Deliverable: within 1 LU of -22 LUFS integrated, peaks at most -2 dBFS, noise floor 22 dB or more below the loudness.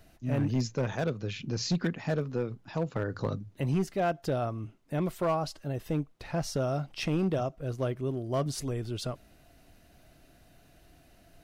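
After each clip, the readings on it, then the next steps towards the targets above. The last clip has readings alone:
clipped samples 1.2%; clipping level -22.0 dBFS; loudness -32.0 LUFS; peak level -22.0 dBFS; loudness target -22.0 LUFS
-> clip repair -22 dBFS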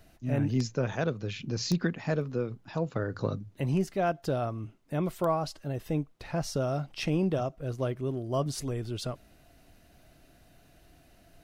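clipped samples 0.0%; loudness -31.5 LUFS; peak level -13.0 dBFS; loudness target -22.0 LUFS
-> trim +9.5 dB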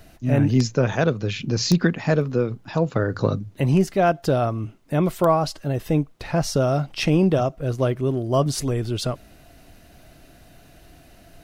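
loudness -22.0 LUFS; peak level -3.5 dBFS; noise floor -51 dBFS

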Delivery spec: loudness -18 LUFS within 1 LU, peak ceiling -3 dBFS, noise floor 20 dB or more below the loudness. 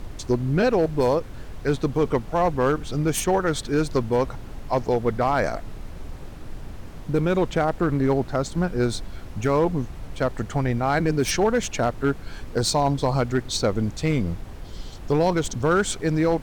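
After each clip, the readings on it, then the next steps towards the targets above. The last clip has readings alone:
clipped samples 0.8%; clipping level -13.5 dBFS; noise floor -38 dBFS; noise floor target -44 dBFS; loudness -23.5 LUFS; peak level -13.5 dBFS; loudness target -18.0 LUFS
-> clip repair -13.5 dBFS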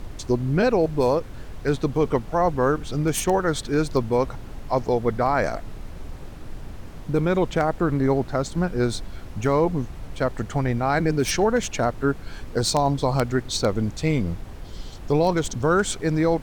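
clipped samples 0.0%; noise floor -38 dBFS; noise floor target -44 dBFS
-> noise print and reduce 6 dB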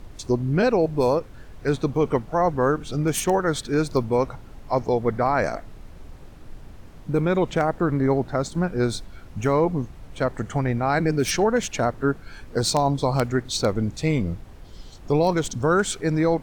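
noise floor -44 dBFS; loudness -23.5 LUFS; peak level -4.5 dBFS; loudness target -18.0 LUFS
-> trim +5.5 dB; peak limiter -3 dBFS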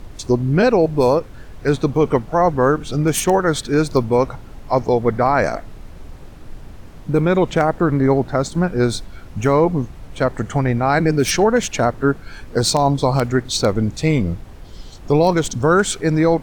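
loudness -18.0 LUFS; peak level -3.0 dBFS; noise floor -38 dBFS

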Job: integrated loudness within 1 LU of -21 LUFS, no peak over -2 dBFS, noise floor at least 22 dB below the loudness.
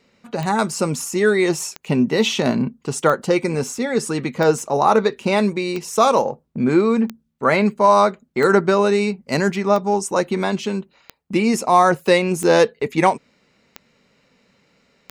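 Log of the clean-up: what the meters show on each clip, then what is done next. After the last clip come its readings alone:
clicks found 12; loudness -18.5 LUFS; peak level -3.5 dBFS; loudness target -21.0 LUFS
-> de-click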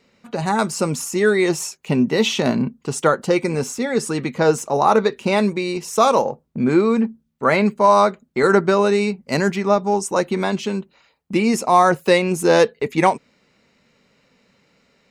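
clicks found 0; loudness -18.5 LUFS; peak level -3.5 dBFS; loudness target -21.0 LUFS
-> trim -2.5 dB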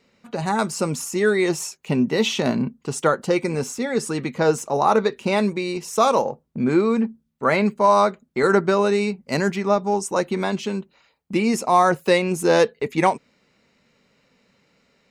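loudness -21.0 LUFS; peak level -6.0 dBFS; noise floor -65 dBFS

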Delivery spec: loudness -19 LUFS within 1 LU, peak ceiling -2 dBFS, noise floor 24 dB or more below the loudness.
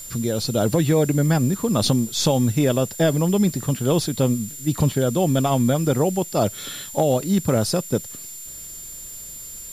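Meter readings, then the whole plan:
steady tone 7.2 kHz; tone level -36 dBFS; noise floor -37 dBFS; noise floor target -45 dBFS; loudness -21.0 LUFS; peak level -8.0 dBFS; loudness target -19.0 LUFS
-> band-stop 7.2 kHz, Q 30; noise reduction 8 dB, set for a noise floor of -37 dBFS; trim +2 dB

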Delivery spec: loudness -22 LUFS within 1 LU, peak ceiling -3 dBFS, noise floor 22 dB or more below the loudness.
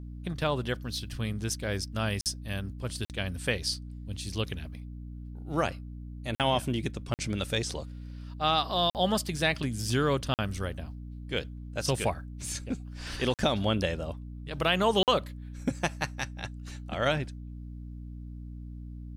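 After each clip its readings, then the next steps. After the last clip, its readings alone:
dropouts 8; longest dropout 48 ms; hum 60 Hz; highest harmonic 300 Hz; hum level -39 dBFS; loudness -31.0 LUFS; peak level -12.0 dBFS; loudness target -22.0 LUFS
-> interpolate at 2.21/3.05/6.35/7.14/8.90/10.34/13.34/15.03 s, 48 ms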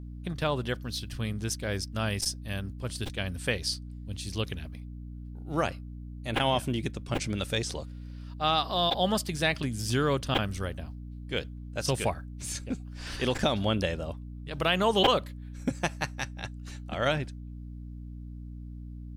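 dropouts 0; hum 60 Hz; highest harmonic 300 Hz; hum level -39 dBFS
-> hum notches 60/120/180/240/300 Hz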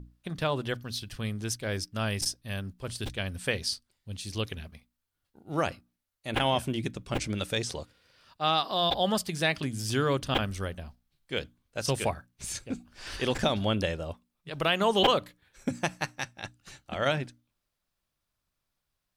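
hum not found; loudness -30.5 LUFS; peak level -9.5 dBFS; loudness target -22.0 LUFS
-> trim +8.5 dB; peak limiter -3 dBFS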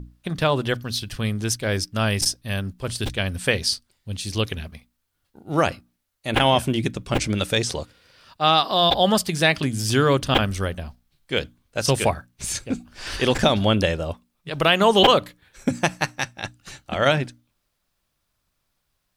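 loudness -22.0 LUFS; peak level -3.0 dBFS; noise floor -75 dBFS

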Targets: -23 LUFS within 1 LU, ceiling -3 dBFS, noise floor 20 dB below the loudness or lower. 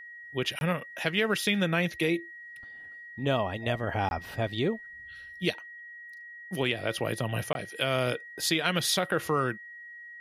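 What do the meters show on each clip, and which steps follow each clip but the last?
dropouts 3; longest dropout 21 ms; steady tone 1.9 kHz; tone level -43 dBFS; loudness -29.5 LUFS; peak level -10.0 dBFS; loudness target -23.0 LUFS
-> interpolate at 0.59/4.09/7.53 s, 21 ms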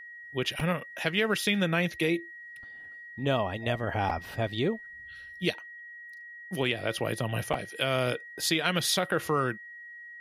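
dropouts 0; steady tone 1.9 kHz; tone level -43 dBFS
-> band-stop 1.9 kHz, Q 30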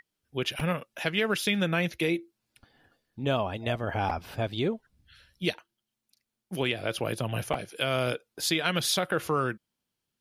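steady tone not found; loudness -29.5 LUFS; peak level -10.0 dBFS; loudness target -23.0 LUFS
-> trim +6.5 dB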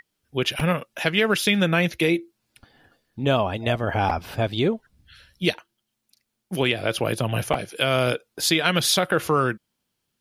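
loudness -23.0 LUFS; peak level -3.5 dBFS; noise floor -79 dBFS

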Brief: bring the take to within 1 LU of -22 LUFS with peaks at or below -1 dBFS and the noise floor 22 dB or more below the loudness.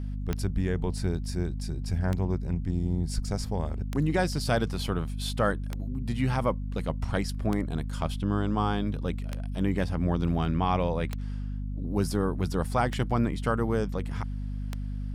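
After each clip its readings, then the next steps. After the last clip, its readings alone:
clicks found 9; hum 50 Hz; highest harmonic 250 Hz; hum level -30 dBFS; loudness -29.5 LUFS; peak level -13.0 dBFS; loudness target -22.0 LUFS
-> de-click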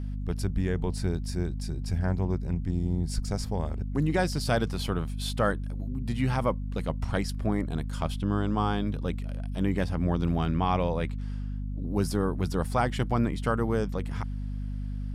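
clicks found 0; hum 50 Hz; highest harmonic 250 Hz; hum level -30 dBFS
-> de-hum 50 Hz, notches 5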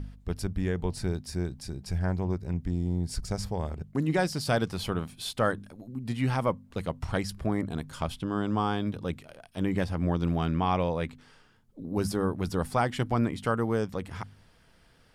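hum not found; loudness -30.5 LUFS; peak level -14.0 dBFS; loudness target -22.0 LUFS
-> trim +8.5 dB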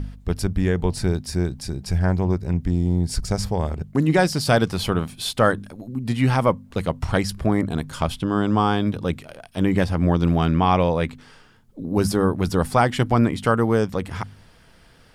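loudness -22.0 LUFS; peak level -5.5 dBFS; noise floor -52 dBFS

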